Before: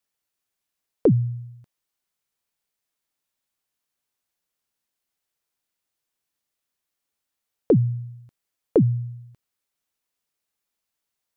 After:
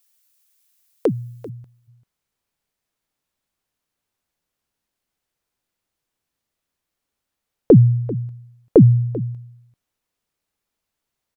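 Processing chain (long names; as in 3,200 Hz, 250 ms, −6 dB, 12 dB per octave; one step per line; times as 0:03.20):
spectral tilt +4 dB per octave, from 0:01.48 −1.5 dB per octave
single-tap delay 391 ms −17 dB
level +4.5 dB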